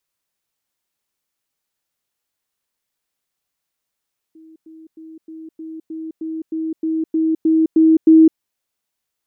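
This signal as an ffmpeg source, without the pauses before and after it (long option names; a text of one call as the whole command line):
ffmpeg -f lavfi -i "aevalsrc='pow(10,(-41+3*floor(t/0.31))/20)*sin(2*PI*320*t)*clip(min(mod(t,0.31),0.21-mod(t,0.31))/0.005,0,1)':duration=4.03:sample_rate=44100" out.wav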